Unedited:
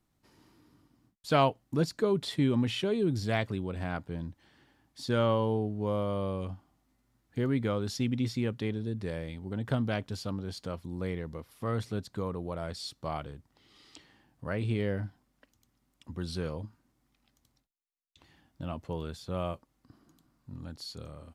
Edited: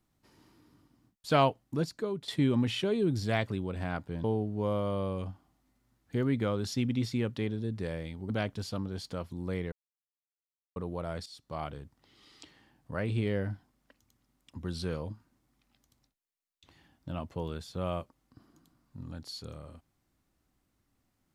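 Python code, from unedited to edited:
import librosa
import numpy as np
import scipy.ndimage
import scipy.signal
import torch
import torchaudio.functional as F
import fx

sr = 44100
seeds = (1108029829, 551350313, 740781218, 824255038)

y = fx.edit(x, sr, fx.fade_out_to(start_s=1.47, length_s=0.81, floor_db=-10.5),
    fx.cut(start_s=4.24, length_s=1.23),
    fx.cut(start_s=9.53, length_s=0.3),
    fx.silence(start_s=11.25, length_s=1.04),
    fx.fade_in_from(start_s=12.79, length_s=0.45, floor_db=-14.0), tone=tone)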